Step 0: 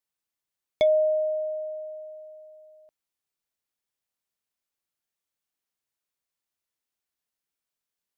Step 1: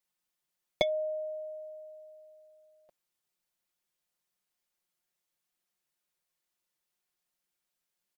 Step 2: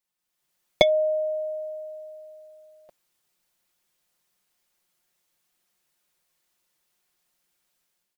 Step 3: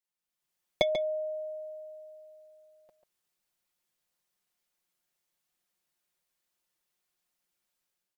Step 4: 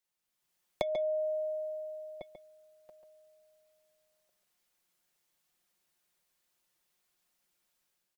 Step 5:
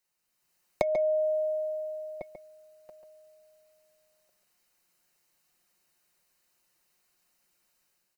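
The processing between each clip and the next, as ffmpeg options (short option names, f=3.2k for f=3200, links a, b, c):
-af "aecho=1:1:5.6:0.84"
-af "dynaudnorm=f=150:g=5:m=10.5dB"
-filter_complex "[0:a]asplit=2[a][b];[b]adelay=139.9,volume=-8dB,highshelf=f=4k:g=-3.15[c];[a][c]amix=inputs=2:normalize=0,volume=-8.5dB"
-filter_complex "[0:a]asplit=2[a][b];[b]adelay=1399,volume=-21dB,highshelf=f=4k:g=-31.5[c];[a][c]amix=inputs=2:normalize=0,acrossover=split=520|1500[d][e][f];[d]acompressor=threshold=-47dB:ratio=4[g];[e]acompressor=threshold=-36dB:ratio=4[h];[f]acompressor=threshold=-53dB:ratio=4[i];[g][h][i]amix=inputs=3:normalize=0,volume=4dB"
-af "asuperstop=centerf=3400:order=4:qfactor=7.6,volume=5.5dB"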